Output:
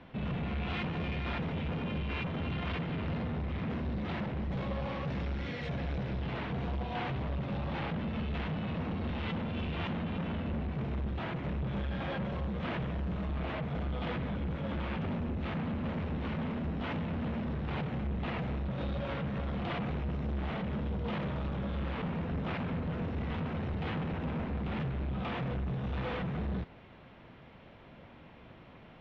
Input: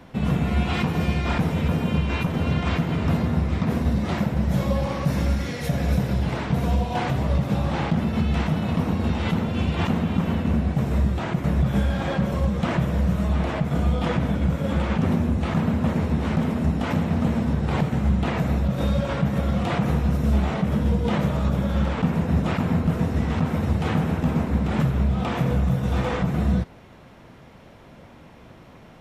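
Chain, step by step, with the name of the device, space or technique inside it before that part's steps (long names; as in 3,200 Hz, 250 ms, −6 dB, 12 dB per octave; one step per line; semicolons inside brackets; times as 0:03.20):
overdriven synthesiser ladder filter (soft clipping −24.5 dBFS, distortion −9 dB; transistor ladder low-pass 4,000 Hz, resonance 30%)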